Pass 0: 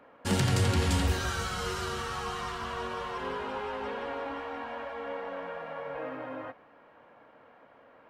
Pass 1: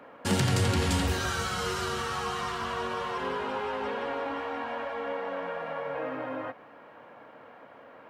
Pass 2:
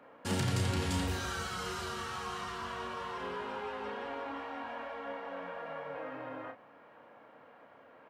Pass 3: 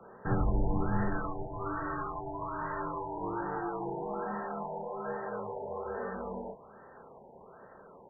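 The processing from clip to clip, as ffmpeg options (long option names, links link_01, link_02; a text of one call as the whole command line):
ffmpeg -i in.wav -filter_complex "[0:a]highpass=83,asplit=2[link_01][link_02];[link_02]acompressor=threshold=-41dB:ratio=6,volume=1dB[link_03];[link_01][link_03]amix=inputs=2:normalize=0" out.wav
ffmpeg -i in.wav -filter_complex "[0:a]asplit=2[link_01][link_02];[link_02]adelay=33,volume=-7dB[link_03];[link_01][link_03]amix=inputs=2:normalize=0,volume=-7.5dB" out.wav
ffmpeg -i in.wav -af "afreqshift=-73,afftfilt=real='re*lt(b*sr/1024,960*pow(2000/960,0.5+0.5*sin(2*PI*1.2*pts/sr)))':imag='im*lt(b*sr/1024,960*pow(2000/960,0.5+0.5*sin(2*PI*1.2*pts/sr)))':win_size=1024:overlap=0.75,volume=4.5dB" out.wav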